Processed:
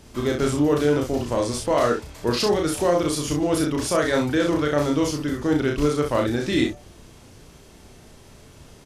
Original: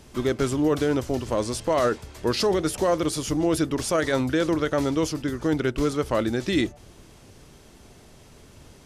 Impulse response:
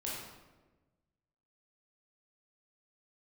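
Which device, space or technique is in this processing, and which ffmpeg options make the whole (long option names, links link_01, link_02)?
slapback doubling: -filter_complex "[0:a]asplit=3[link_01][link_02][link_03];[link_02]adelay=34,volume=-3dB[link_04];[link_03]adelay=63,volume=-7dB[link_05];[link_01][link_04][link_05]amix=inputs=3:normalize=0"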